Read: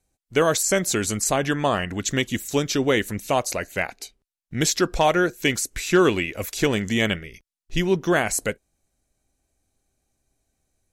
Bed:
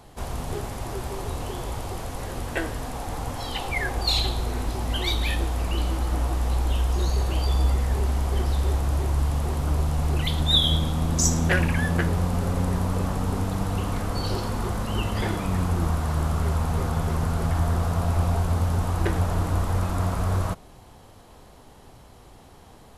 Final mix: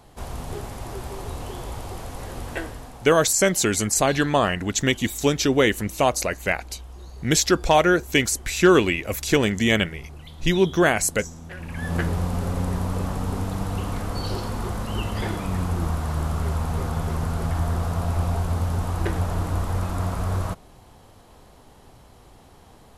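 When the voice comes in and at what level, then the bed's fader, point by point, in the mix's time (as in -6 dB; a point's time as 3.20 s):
2.70 s, +2.0 dB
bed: 2.55 s -2 dB
3.36 s -17.5 dB
11.54 s -17.5 dB
11.95 s -1 dB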